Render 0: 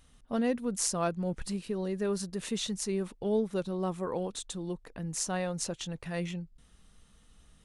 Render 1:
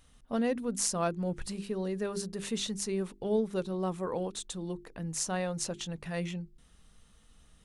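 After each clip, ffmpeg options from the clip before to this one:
-af "bandreject=f=50:t=h:w=6,bandreject=f=100:t=h:w=6,bandreject=f=150:t=h:w=6,bandreject=f=200:t=h:w=6,bandreject=f=250:t=h:w=6,bandreject=f=300:t=h:w=6,bandreject=f=350:t=h:w=6,bandreject=f=400:t=h:w=6"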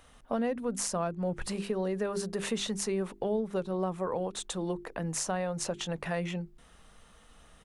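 -filter_complex "[0:a]firequalizer=gain_entry='entry(120,0);entry(600,11);entry(4100,2)':delay=0.05:min_phase=1,acrossover=split=190[a][b];[b]acompressor=threshold=-31dB:ratio=6[c];[a][c]amix=inputs=2:normalize=0,volume=1dB"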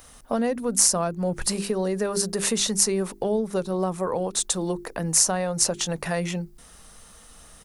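-af "aexciter=amount=3.2:drive=4.5:freq=4.4k,volume=6dB"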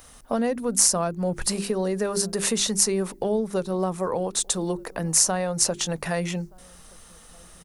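-filter_complex "[0:a]asplit=2[a][b];[b]adelay=1224,volume=-28dB,highshelf=f=4k:g=-27.6[c];[a][c]amix=inputs=2:normalize=0"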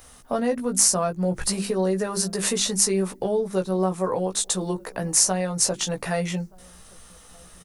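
-filter_complex "[0:a]asplit=2[a][b];[b]adelay=16,volume=-4dB[c];[a][c]amix=inputs=2:normalize=0,volume=-1dB"

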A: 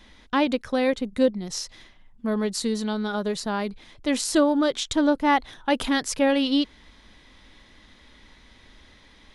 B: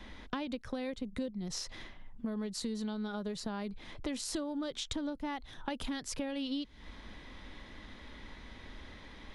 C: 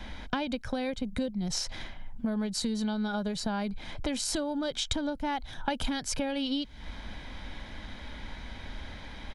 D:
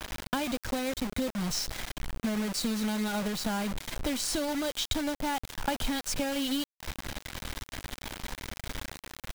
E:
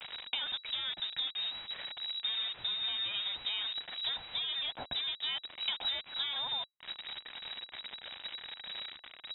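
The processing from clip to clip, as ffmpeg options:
-filter_complex "[0:a]acrossover=split=180|3000[a][b][c];[b]acompressor=threshold=-38dB:ratio=2[d];[a][d][c]amix=inputs=3:normalize=0,highshelf=f=3.5k:g=-10.5,acompressor=threshold=-40dB:ratio=4,volume=4dB"
-af "aecho=1:1:1.3:0.4,volume=6.5dB"
-af "acrusher=bits=5:mix=0:aa=0.000001"
-af "lowpass=f=3.3k:t=q:w=0.5098,lowpass=f=3.3k:t=q:w=0.6013,lowpass=f=3.3k:t=q:w=0.9,lowpass=f=3.3k:t=q:w=2.563,afreqshift=-3900,volume=-5dB"

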